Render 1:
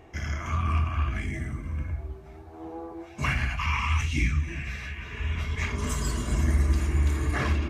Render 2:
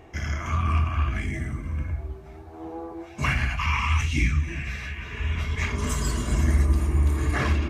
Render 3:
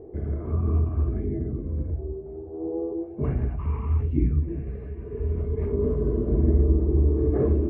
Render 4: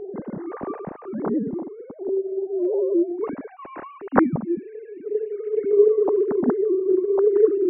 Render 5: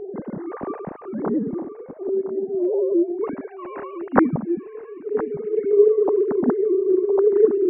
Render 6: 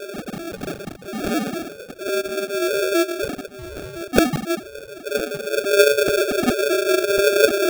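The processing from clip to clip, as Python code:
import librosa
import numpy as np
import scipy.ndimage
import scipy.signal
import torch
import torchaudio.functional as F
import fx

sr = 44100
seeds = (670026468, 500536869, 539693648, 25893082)

y1 = fx.spec_box(x, sr, start_s=6.65, length_s=0.53, low_hz=1300.0, high_hz=8100.0, gain_db=-6)
y1 = y1 * 10.0 ** (2.5 / 20.0)
y2 = fx.lowpass_res(y1, sr, hz=430.0, q=4.9)
y3 = fx.sine_speech(y2, sr)
y3 = y3 * 10.0 ** (1.5 / 20.0)
y4 = y3 + 10.0 ** (-14.5 / 20.0) * np.pad(y3, (int(1013 * sr / 1000.0), 0))[:len(y3)]
y4 = y4 * 10.0 ** (1.0 / 20.0)
y5 = fx.sample_hold(y4, sr, seeds[0], rate_hz=1000.0, jitter_pct=0)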